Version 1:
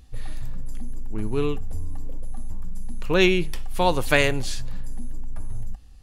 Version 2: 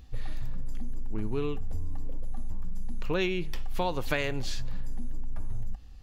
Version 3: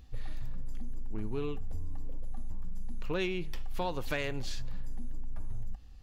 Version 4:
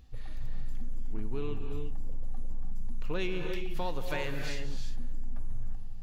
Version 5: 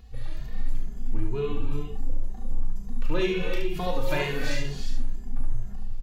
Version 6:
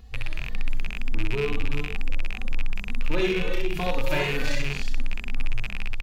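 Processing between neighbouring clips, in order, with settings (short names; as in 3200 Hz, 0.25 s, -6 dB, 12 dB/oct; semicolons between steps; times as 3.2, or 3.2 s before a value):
bell 9500 Hz -12.5 dB 0.62 oct; compressor 10:1, threshold -24 dBFS, peak gain reduction 11.5 dB
soft clip -17 dBFS, distortion -30 dB; gain -3.5 dB
non-linear reverb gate 0.38 s rising, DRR 3.5 dB; gain -2 dB
on a send: early reflections 35 ms -7 dB, 72 ms -5 dB; on the sum: endless flanger 2.4 ms +2.1 Hz; gain +8 dB
rattling part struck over -37 dBFS, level -21 dBFS; in parallel at -5 dB: hard clip -21.5 dBFS, distortion -11 dB; on the sum: gain -2 dB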